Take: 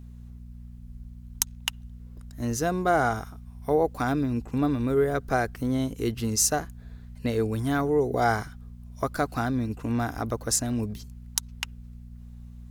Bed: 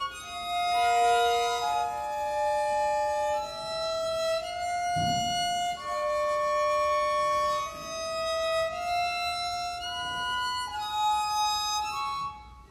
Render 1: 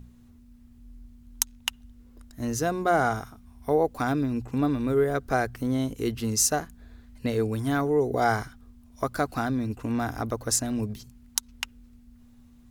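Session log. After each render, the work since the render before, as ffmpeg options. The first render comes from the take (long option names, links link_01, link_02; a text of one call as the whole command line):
ffmpeg -i in.wav -af "bandreject=frequency=60:width_type=h:width=4,bandreject=frequency=120:width_type=h:width=4,bandreject=frequency=180:width_type=h:width=4" out.wav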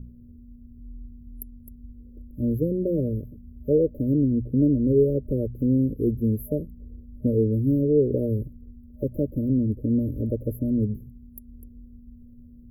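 ffmpeg -i in.wav -af "afftfilt=real='re*(1-between(b*sr/4096,610,11000))':imag='im*(1-between(b*sr/4096,610,11000))':win_size=4096:overlap=0.75,tiltshelf=frequency=770:gain=7" out.wav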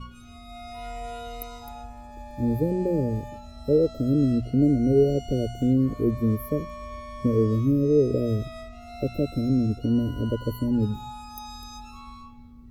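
ffmpeg -i in.wav -i bed.wav -filter_complex "[1:a]volume=-14dB[link_01];[0:a][link_01]amix=inputs=2:normalize=0" out.wav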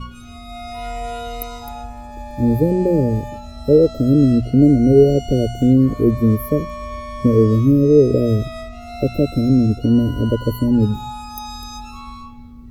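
ffmpeg -i in.wav -af "volume=8.5dB" out.wav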